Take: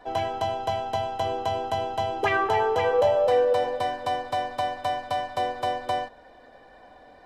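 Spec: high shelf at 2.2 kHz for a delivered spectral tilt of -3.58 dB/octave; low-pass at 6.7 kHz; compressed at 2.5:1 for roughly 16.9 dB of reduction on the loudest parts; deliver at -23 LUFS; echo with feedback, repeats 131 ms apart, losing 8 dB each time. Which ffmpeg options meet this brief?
-af "lowpass=6700,highshelf=f=2200:g=-8,acompressor=threshold=0.00562:ratio=2.5,aecho=1:1:131|262|393|524|655:0.398|0.159|0.0637|0.0255|0.0102,volume=7.08"

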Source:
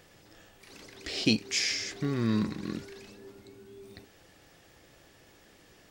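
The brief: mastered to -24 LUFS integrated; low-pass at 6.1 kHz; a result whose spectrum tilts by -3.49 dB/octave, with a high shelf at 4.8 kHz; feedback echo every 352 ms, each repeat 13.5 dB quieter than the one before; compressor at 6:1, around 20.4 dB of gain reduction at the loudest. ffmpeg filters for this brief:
-af "lowpass=6100,highshelf=f=4800:g=7,acompressor=threshold=0.00794:ratio=6,aecho=1:1:352|704:0.211|0.0444,volume=14.1"

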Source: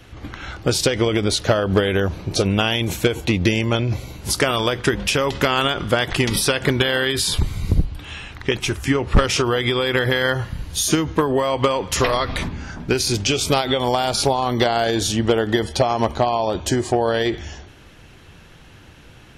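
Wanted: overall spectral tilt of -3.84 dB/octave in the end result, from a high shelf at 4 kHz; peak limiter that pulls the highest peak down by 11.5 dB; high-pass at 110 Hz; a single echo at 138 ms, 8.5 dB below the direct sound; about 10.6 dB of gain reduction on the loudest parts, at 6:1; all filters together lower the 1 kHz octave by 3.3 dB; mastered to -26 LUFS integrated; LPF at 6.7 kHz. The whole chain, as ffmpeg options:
-af "highpass=110,lowpass=6700,equalizer=f=1000:t=o:g=-5,highshelf=f=4000:g=5,acompressor=threshold=0.0562:ratio=6,alimiter=limit=0.0891:level=0:latency=1,aecho=1:1:138:0.376,volume=1.78"

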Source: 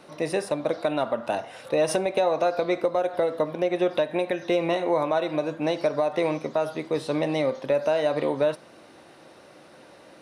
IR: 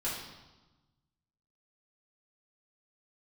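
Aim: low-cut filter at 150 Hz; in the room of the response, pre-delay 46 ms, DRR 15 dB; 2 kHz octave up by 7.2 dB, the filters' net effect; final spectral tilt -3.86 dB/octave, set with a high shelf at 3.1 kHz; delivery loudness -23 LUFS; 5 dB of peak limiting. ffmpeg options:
-filter_complex "[0:a]highpass=150,equalizer=f=2000:t=o:g=6.5,highshelf=f=3100:g=6.5,alimiter=limit=0.2:level=0:latency=1,asplit=2[s0][s1];[1:a]atrim=start_sample=2205,adelay=46[s2];[s1][s2]afir=irnorm=-1:irlink=0,volume=0.1[s3];[s0][s3]amix=inputs=2:normalize=0,volume=1.33"

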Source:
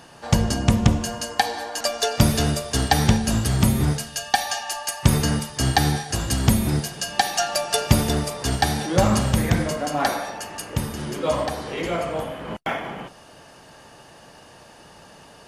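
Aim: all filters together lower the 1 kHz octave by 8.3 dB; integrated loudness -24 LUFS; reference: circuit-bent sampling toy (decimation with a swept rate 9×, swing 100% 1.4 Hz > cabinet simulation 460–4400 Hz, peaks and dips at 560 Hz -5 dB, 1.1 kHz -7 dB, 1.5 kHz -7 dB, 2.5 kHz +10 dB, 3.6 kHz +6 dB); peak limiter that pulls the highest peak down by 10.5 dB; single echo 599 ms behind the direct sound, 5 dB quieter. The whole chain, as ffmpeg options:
-af "equalizer=f=1000:t=o:g=-8.5,alimiter=limit=0.251:level=0:latency=1,aecho=1:1:599:0.562,acrusher=samples=9:mix=1:aa=0.000001:lfo=1:lforange=9:lforate=1.4,highpass=460,equalizer=f=560:t=q:w=4:g=-5,equalizer=f=1100:t=q:w=4:g=-7,equalizer=f=1500:t=q:w=4:g=-7,equalizer=f=2500:t=q:w=4:g=10,equalizer=f=3600:t=q:w=4:g=6,lowpass=f=4400:w=0.5412,lowpass=f=4400:w=1.3066,volume=1.58"

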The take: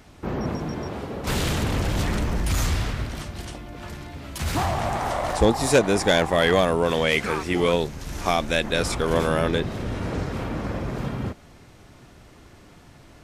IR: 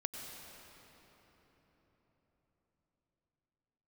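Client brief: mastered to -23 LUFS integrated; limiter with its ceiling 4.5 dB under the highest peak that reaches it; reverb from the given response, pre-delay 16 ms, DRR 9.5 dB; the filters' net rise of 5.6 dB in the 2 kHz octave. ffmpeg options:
-filter_complex "[0:a]equalizer=f=2000:t=o:g=7,alimiter=limit=0.398:level=0:latency=1,asplit=2[s0][s1];[1:a]atrim=start_sample=2205,adelay=16[s2];[s1][s2]afir=irnorm=-1:irlink=0,volume=0.335[s3];[s0][s3]amix=inputs=2:normalize=0"

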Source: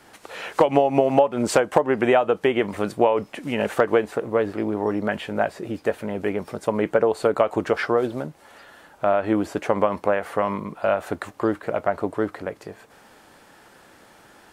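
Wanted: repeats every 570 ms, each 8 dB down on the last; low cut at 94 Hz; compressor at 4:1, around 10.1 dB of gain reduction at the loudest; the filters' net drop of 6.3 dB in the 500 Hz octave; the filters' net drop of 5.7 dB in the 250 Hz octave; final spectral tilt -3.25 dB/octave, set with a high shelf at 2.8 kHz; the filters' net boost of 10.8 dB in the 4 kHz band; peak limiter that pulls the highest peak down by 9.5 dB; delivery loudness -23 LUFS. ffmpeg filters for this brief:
-af "highpass=94,equalizer=f=250:t=o:g=-5,equalizer=f=500:t=o:g=-7,highshelf=f=2800:g=8,equalizer=f=4000:t=o:g=8.5,acompressor=threshold=0.0398:ratio=4,alimiter=limit=0.106:level=0:latency=1,aecho=1:1:570|1140|1710|2280|2850:0.398|0.159|0.0637|0.0255|0.0102,volume=3.55"

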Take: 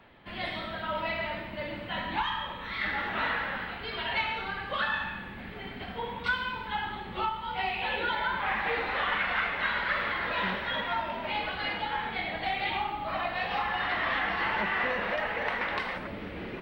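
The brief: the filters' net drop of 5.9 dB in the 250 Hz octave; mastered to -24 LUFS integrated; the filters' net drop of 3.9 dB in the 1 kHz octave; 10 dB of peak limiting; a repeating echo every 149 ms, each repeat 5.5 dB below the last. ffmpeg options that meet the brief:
-af "equalizer=f=250:t=o:g=-8,equalizer=f=1000:t=o:g=-4.5,alimiter=level_in=1.5:limit=0.0631:level=0:latency=1,volume=0.668,aecho=1:1:149|298|447|596|745|894|1043:0.531|0.281|0.149|0.079|0.0419|0.0222|0.0118,volume=3.35"

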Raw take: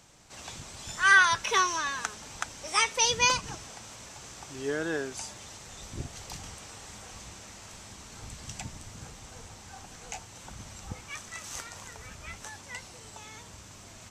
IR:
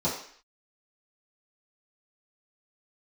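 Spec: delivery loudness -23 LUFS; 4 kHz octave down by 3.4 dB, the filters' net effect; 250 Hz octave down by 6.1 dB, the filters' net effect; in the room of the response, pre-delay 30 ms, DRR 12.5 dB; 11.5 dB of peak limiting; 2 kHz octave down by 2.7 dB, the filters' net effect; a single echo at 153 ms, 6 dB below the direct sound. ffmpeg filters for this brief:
-filter_complex "[0:a]equalizer=f=250:t=o:g=-9,equalizer=f=2000:t=o:g=-3,equalizer=f=4000:t=o:g=-3.5,alimiter=limit=0.0794:level=0:latency=1,aecho=1:1:153:0.501,asplit=2[s0][s1];[1:a]atrim=start_sample=2205,adelay=30[s2];[s1][s2]afir=irnorm=-1:irlink=0,volume=0.075[s3];[s0][s3]amix=inputs=2:normalize=0,volume=5.01"

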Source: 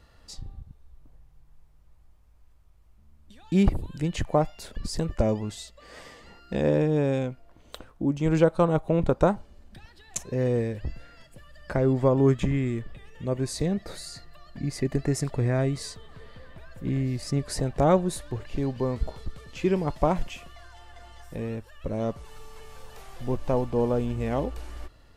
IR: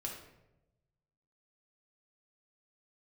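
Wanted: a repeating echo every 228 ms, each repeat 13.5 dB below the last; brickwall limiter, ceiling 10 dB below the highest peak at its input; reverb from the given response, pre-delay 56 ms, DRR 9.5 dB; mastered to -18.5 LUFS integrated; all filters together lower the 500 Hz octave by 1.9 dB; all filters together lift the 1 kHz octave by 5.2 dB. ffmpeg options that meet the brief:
-filter_complex "[0:a]equalizer=f=500:t=o:g=-4.5,equalizer=f=1000:t=o:g=8.5,alimiter=limit=0.158:level=0:latency=1,aecho=1:1:228|456:0.211|0.0444,asplit=2[s0][s1];[1:a]atrim=start_sample=2205,adelay=56[s2];[s1][s2]afir=irnorm=-1:irlink=0,volume=0.355[s3];[s0][s3]amix=inputs=2:normalize=0,volume=3.35"

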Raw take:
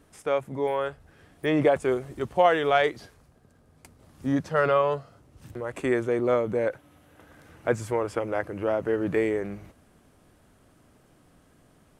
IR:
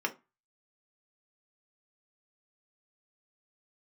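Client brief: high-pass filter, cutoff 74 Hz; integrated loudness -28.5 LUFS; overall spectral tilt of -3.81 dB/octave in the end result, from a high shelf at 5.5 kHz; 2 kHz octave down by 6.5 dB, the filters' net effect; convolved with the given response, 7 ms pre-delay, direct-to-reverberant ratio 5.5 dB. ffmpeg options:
-filter_complex "[0:a]highpass=74,equalizer=f=2000:t=o:g=-8,highshelf=f=5500:g=-5.5,asplit=2[s0][s1];[1:a]atrim=start_sample=2205,adelay=7[s2];[s1][s2]afir=irnorm=-1:irlink=0,volume=0.251[s3];[s0][s3]amix=inputs=2:normalize=0,volume=0.75"

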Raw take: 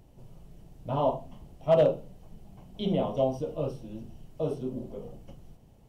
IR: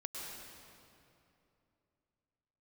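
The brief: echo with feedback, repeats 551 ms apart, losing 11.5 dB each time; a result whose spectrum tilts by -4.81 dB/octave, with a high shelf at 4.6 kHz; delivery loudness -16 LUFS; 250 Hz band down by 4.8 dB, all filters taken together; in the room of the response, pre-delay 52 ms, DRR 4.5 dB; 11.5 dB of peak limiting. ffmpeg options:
-filter_complex "[0:a]equalizer=f=250:t=o:g=-7,highshelf=f=4600:g=8,alimiter=limit=0.0631:level=0:latency=1,aecho=1:1:551|1102|1653:0.266|0.0718|0.0194,asplit=2[s0][s1];[1:a]atrim=start_sample=2205,adelay=52[s2];[s1][s2]afir=irnorm=-1:irlink=0,volume=0.631[s3];[s0][s3]amix=inputs=2:normalize=0,volume=9.44"

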